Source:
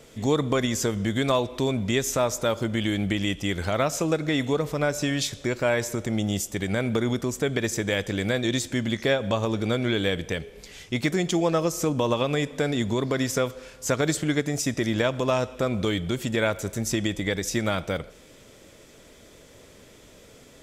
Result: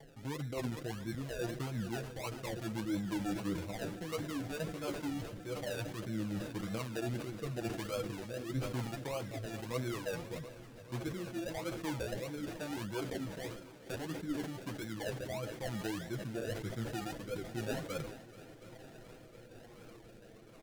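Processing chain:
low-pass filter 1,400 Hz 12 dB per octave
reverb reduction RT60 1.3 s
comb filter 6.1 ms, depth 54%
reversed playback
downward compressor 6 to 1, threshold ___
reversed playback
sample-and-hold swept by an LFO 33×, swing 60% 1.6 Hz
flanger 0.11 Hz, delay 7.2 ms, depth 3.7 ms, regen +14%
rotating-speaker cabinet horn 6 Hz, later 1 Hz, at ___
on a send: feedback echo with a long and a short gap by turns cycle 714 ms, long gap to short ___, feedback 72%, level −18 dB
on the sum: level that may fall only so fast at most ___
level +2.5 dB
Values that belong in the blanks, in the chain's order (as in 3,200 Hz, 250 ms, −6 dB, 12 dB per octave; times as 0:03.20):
−35 dBFS, 0:04.08, 1.5 to 1, 67 dB per second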